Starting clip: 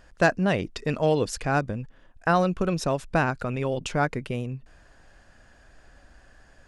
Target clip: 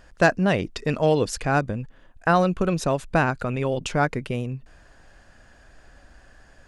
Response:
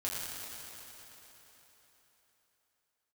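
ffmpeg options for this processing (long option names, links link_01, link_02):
-filter_complex "[0:a]asettb=1/sr,asplit=3[link_01][link_02][link_03];[link_01]atrim=end=1.414[link_04];[link_02]atrim=start=1.41:end=3.77,asetpts=PTS-STARTPTS,afade=type=in:duration=0.004:curve=qsin,afade=type=out:start_time=2.356:duration=0.004:curve=qsin,bandreject=frequency=5400:width=11[link_05];[link_03]atrim=start=3.766[link_06];[link_04][link_05]acrossfade=duration=0.004:curve1=hsin:curve2=qsin[link_07];[link_07][link_06]acrossfade=duration=0.004:curve1=qsin:curve2=hsin,volume=2.5dB"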